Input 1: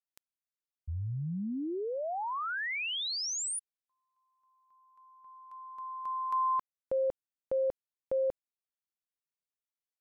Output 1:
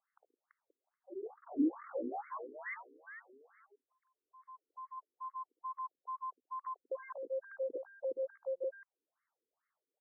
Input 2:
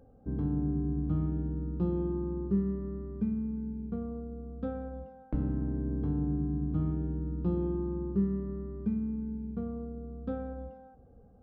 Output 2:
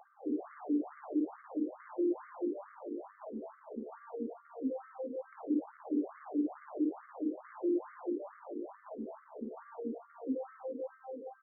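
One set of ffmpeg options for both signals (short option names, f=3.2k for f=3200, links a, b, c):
-filter_complex "[0:a]lowshelf=f=98:g=-7.5,aecho=1:1:55|71|129|164|335|528:0.473|0.266|0.112|0.15|0.282|0.422,asplit=2[a][b];[b]acompressor=threshold=-40dB:ratio=6:release=23,volume=0dB[c];[a][c]amix=inputs=2:normalize=0,asoftclip=type=tanh:threshold=-33.5dB,acrossover=split=340[d][e];[e]acompressor=threshold=-52dB:ratio=4:attack=2.2:release=289:knee=2.83:detection=peak[f];[d][f]amix=inputs=2:normalize=0,afftfilt=real='re*between(b*sr/1024,340*pow(1600/340,0.5+0.5*sin(2*PI*2.3*pts/sr))/1.41,340*pow(1600/340,0.5+0.5*sin(2*PI*2.3*pts/sr))*1.41)':imag='im*between(b*sr/1024,340*pow(1600/340,0.5+0.5*sin(2*PI*2.3*pts/sr))/1.41,340*pow(1600/340,0.5+0.5*sin(2*PI*2.3*pts/sr))*1.41)':win_size=1024:overlap=0.75,volume=11.5dB"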